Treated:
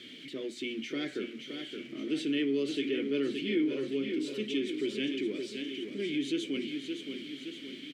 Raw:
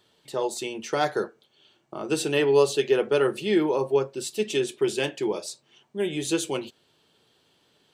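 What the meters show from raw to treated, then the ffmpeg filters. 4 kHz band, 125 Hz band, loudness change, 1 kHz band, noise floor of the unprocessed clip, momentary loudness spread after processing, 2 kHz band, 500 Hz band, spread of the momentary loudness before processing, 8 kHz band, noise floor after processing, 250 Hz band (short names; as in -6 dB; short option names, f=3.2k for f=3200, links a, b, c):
-3.5 dB, -11.5 dB, -8.5 dB, under -20 dB, -67 dBFS, 10 LU, -6.5 dB, -11.0 dB, 15 LU, -17.0 dB, -47 dBFS, -1.5 dB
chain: -filter_complex "[0:a]aeval=exprs='val(0)+0.5*0.0158*sgn(val(0))':c=same,asplit=3[a][b][c];[a]bandpass=f=270:t=q:w=8,volume=0dB[d];[b]bandpass=f=2.29k:t=q:w=8,volume=-6dB[e];[c]bandpass=f=3.01k:t=q:w=8,volume=-9dB[f];[d][e][f]amix=inputs=3:normalize=0,aecho=1:1:569|1138|1707|2276|2845|3414:0.398|0.211|0.112|0.0593|0.0314|0.0166,asplit=2[g][h];[h]alimiter=level_in=10dB:limit=-24dB:level=0:latency=1:release=21,volume=-10dB,volume=0dB[i];[g][i]amix=inputs=2:normalize=0,volume=1dB"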